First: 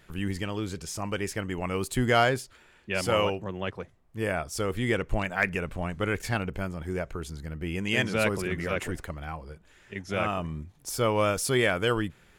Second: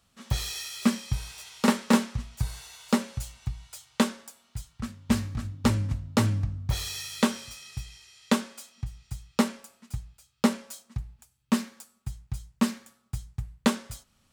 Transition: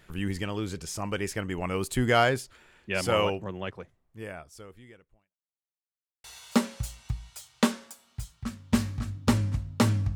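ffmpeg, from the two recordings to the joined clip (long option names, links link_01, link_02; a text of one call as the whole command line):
ffmpeg -i cue0.wav -i cue1.wav -filter_complex "[0:a]apad=whole_dur=10.15,atrim=end=10.15,asplit=2[link_01][link_02];[link_01]atrim=end=5.37,asetpts=PTS-STARTPTS,afade=type=out:start_time=3.37:duration=2:curve=qua[link_03];[link_02]atrim=start=5.37:end=6.24,asetpts=PTS-STARTPTS,volume=0[link_04];[1:a]atrim=start=2.61:end=6.52,asetpts=PTS-STARTPTS,afade=type=in:duration=0.004:curve=hsin[link_05];[link_03][link_04][link_05]concat=n=3:v=0:a=1" out.wav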